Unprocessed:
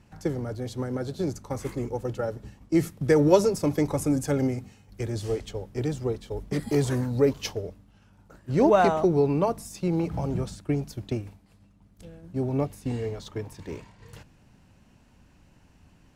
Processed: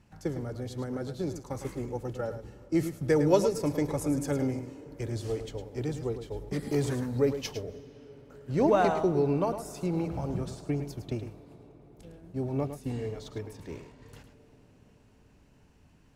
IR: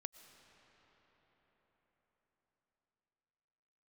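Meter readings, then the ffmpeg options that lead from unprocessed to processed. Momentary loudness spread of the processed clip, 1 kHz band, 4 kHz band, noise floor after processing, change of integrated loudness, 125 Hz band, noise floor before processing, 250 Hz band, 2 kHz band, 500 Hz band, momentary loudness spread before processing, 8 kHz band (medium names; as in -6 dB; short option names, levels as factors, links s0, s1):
16 LU, -4.0 dB, -4.0 dB, -60 dBFS, -4.0 dB, -4.0 dB, -58 dBFS, -4.0 dB, -4.0 dB, -4.0 dB, 15 LU, -4.0 dB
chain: -filter_complex "[0:a]asplit=2[s0][s1];[1:a]atrim=start_sample=2205,asetrate=33075,aresample=44100,adelay=107[s2];[s1][s2]afir=irnorm=-1:irlink=0,volume=0.473[s3];[s0][s3]amix=inputs=2:normalize=0,volume=0.596"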